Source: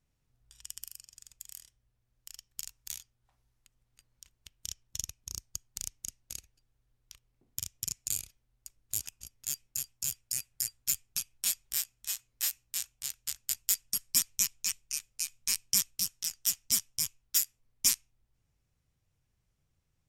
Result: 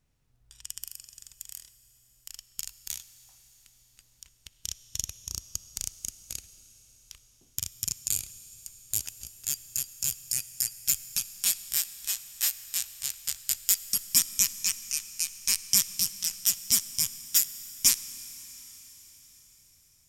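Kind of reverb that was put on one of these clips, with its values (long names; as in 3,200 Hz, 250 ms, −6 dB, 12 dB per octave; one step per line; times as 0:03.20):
comb and all-pass reverb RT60 5 s, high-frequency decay 1×, pre-delay 20 ms, DRR 14 dB
level +4.5 dB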